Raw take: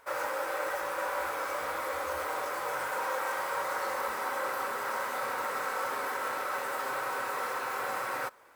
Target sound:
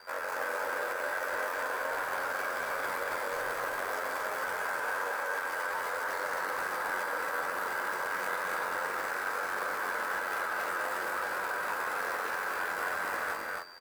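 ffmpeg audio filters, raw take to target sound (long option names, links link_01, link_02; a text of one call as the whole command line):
ffmpeg -i in.wav -filter_complex "[0:a]equalizer=frequency=1600:width_type=o:width=0.21:gain=9,aeval=exprs='val(0)+0.00112*sin(2*PI*4700*n/s)':channel_layout=same,aeval=exprs='val(0)*sin(2*PI*45*n/s)':channel_layout=same,alimiter=level_in=8.5dB:limit=-24dB:level=0:latency=1:release=11,volume=-8.5dB,atempo=0.62,asplit=2[link_01][link_02];[link_02]aecho=0:1:230.3|271.1:0.447|0.708[link_03];[link_01][link_03]amix=inputs=2:normalize=0,volume=6dB" out.wav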